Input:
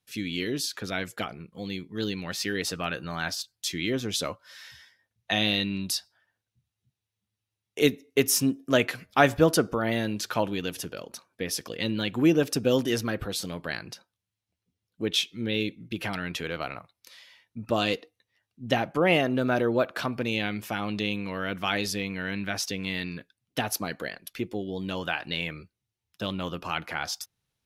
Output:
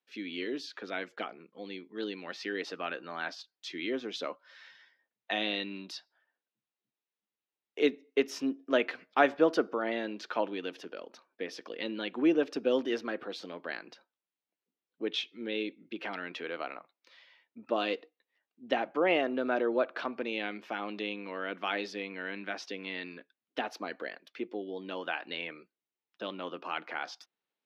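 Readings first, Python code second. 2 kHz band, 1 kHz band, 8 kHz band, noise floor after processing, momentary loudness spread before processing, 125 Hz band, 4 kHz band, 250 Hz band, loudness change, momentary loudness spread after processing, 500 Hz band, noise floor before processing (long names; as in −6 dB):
−5.5 dB, −4.0 dB, below −20 dB, below −85 dBFS, 14 LU, −21.0 dB, −9.0 dB, −6.5 dB, −6.0 dB, 14 LU, −3.5 dB, below −85 dBFS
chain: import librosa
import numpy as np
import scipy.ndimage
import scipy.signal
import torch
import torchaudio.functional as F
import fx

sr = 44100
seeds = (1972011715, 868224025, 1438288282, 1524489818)

y = scipy.signal.sosfilt(scipy.signal.butter(4, 270.0, 'highpass', fs=sr, output='sos'), x)
y = fx.air_absorb(y, sr, metres=230.0)
y = F.gain(torch.from_numpy(y), -3.0).numpy()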